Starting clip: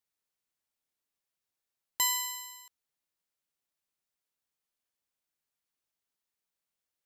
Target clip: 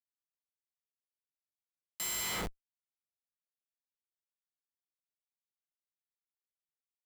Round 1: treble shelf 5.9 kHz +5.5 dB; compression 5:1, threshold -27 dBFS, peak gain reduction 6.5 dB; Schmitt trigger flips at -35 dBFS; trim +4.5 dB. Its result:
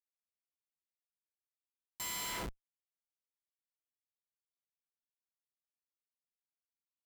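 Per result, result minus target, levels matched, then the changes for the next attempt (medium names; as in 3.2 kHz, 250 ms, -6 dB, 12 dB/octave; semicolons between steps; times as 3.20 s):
compression: peak gain reduction +6.5 dB; 1 kHz band +3.5 dB
remove: compression 5:1, threshold -27 dBFS, peak gain reduction 6.5 dB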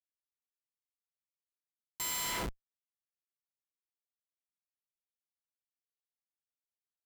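1 kHz band +3.0 dB
add first: high-pass 1.4 kHz 24 dB/octave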